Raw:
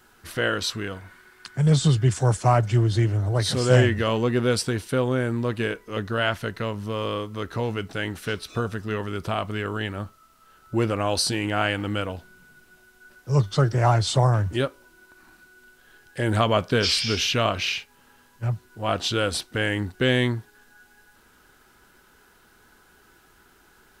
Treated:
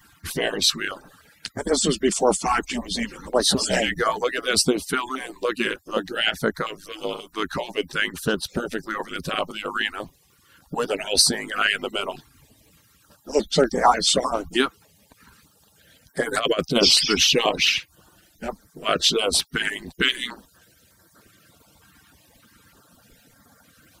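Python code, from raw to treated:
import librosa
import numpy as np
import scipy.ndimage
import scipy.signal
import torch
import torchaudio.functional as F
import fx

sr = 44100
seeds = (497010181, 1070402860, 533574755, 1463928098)

y = fx.hpss_only(x, sr, part='percussive')
y = fx.over_compress(y, sr, threshold_db=-25.0, ratio=-0.5, at=(16.34, 16.89))
y = fx.filter_held_notch(y, sr, hz=3.3, low_hz=560.0, high_hz=2700.0)
y = y * librosa.db_to_amplitude(9.0)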